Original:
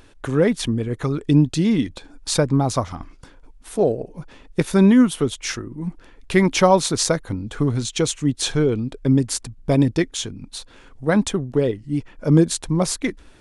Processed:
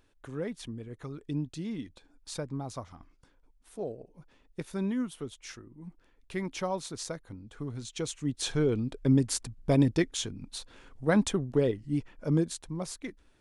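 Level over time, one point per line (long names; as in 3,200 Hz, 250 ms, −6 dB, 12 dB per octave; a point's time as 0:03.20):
0:07.59 −18 dB
0:08.79 −6.5 dB
0:11.94 −6.5 dB
0:12.68 −16 dB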